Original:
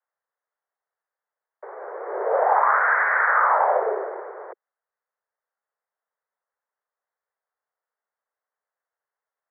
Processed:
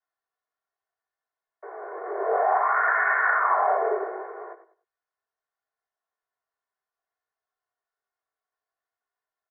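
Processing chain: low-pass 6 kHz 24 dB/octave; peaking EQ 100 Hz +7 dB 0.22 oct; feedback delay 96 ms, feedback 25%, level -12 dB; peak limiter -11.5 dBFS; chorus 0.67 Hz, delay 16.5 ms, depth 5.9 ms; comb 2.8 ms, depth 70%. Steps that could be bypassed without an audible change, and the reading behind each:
low-pass 6 kHz: input has nothing above 2.3 kHz; peaking EQ 100 Hz: input has nothing below 320 Hz

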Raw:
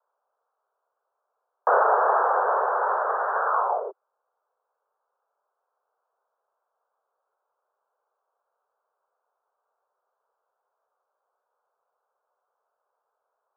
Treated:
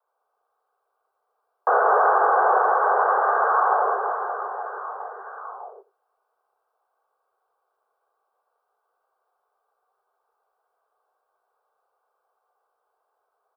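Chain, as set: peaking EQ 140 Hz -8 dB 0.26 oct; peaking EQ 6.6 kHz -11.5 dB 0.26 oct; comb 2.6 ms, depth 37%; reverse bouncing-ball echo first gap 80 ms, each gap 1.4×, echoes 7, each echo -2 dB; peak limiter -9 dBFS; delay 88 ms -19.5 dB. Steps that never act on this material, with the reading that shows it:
peaking EQ 140 Hz: input has nothing below 340 Hz; peaking EQ 6.6 kHz: input has nothing above 1.8 kHz

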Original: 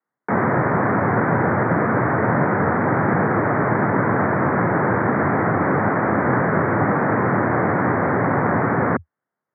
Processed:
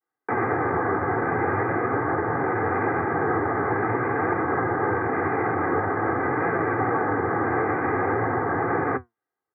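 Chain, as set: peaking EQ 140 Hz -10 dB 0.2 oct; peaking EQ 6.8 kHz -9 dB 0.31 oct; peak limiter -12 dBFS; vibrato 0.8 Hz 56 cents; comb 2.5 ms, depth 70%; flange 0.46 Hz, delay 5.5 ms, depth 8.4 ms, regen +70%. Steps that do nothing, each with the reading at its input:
peaking EQ 6.8 kHz: input has nothing above 2.3 kHz

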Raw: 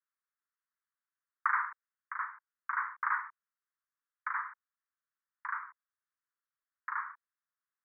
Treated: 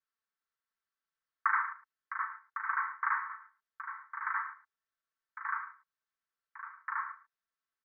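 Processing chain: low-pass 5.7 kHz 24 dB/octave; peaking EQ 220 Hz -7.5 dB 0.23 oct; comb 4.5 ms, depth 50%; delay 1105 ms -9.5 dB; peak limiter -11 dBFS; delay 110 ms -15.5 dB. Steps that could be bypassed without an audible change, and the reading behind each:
low-pass 5.7 kHz: input has nothing above 2.4 kHz; peaking EQ 220 Hz: input has nothing below 810 Hz; peak limiter -11 dBFS: peak at its input -16.0 dBFS

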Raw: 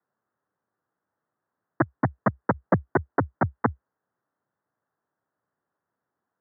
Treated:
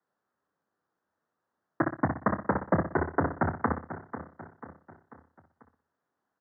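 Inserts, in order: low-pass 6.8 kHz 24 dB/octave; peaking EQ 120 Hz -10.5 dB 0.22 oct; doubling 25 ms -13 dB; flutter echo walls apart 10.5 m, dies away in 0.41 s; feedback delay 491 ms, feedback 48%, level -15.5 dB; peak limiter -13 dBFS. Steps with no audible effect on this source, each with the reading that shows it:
low-pass 6.8 kHz: input has nothing above 2 kHz

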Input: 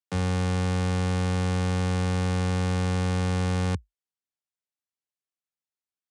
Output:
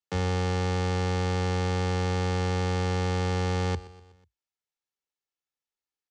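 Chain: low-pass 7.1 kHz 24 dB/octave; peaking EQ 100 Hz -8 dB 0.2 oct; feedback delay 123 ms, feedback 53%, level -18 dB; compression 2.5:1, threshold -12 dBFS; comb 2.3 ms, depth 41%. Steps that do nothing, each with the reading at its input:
compression, threshold -12 dBFS: peak at its input -19.5 dBFS

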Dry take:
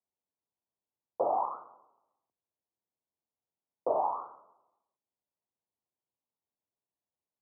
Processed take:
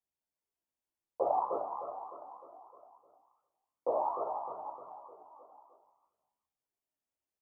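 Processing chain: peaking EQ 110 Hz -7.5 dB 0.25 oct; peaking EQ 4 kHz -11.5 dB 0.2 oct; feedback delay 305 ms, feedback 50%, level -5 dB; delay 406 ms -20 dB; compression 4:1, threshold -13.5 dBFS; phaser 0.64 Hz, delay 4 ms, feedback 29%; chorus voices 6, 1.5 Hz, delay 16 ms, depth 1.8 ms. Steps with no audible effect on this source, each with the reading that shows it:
peaking EQ 4 kHz: input has nothing above 1.4 kHz; compression, threshold -13.5 dBFS: peak at its input -17.5 dBFS

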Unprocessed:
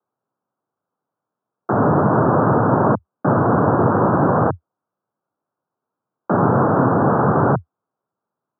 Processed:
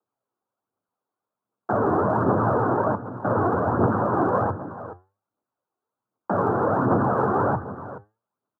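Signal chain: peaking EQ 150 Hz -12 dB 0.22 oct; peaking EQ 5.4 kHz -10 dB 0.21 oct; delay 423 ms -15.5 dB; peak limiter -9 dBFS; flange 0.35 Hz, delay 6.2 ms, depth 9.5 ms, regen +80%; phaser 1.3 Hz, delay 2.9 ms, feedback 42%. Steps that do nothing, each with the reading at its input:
peaking EQ 5.4 kHz: input has nothing above 1.7 kHz

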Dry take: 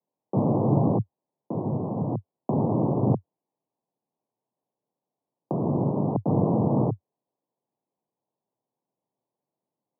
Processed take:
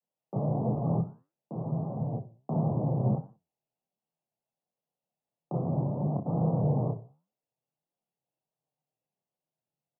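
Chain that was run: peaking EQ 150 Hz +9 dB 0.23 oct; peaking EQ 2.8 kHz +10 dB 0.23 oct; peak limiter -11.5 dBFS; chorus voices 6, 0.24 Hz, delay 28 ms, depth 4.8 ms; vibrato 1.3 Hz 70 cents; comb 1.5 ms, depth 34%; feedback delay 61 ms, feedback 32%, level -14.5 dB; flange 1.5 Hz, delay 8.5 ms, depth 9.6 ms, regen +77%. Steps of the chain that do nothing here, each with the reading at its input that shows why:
peaking EQ 2.8 kHz: input has nothing above 960 Hz

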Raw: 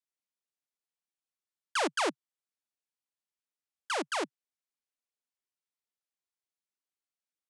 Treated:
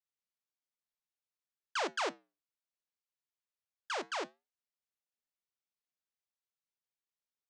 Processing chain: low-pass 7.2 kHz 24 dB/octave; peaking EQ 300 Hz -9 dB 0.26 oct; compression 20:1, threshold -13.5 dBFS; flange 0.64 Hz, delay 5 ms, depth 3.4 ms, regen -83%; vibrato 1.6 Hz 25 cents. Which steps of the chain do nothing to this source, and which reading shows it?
compression, threshold -13.5 dBFS: peak at its input -20.0 dBFS

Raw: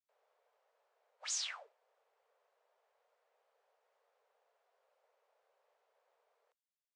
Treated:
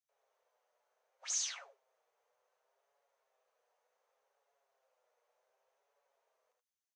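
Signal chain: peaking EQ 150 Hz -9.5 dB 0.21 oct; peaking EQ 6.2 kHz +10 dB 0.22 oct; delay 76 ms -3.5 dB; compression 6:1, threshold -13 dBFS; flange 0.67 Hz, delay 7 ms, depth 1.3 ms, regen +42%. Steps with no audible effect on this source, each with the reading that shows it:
peaking EQ 150 Hz: input has nothing below 380 Hz; compression, threshold -13 dBFS: peak at its input -20.5 dBFS

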